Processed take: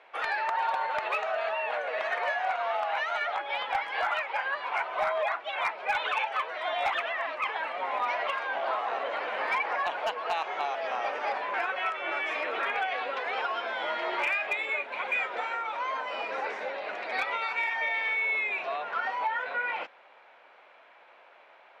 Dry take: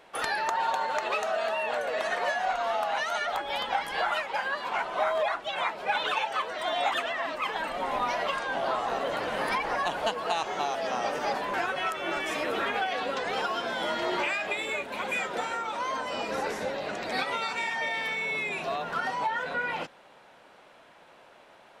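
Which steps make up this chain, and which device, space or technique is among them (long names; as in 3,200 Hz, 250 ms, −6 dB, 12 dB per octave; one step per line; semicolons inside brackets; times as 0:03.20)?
megaphone (band-pass filter 560–2,800 Hz; parametric band 2,300 Hz +6 dB 0.29 octaves; hard clipping −20.5 dBFS, distortion −28 dB)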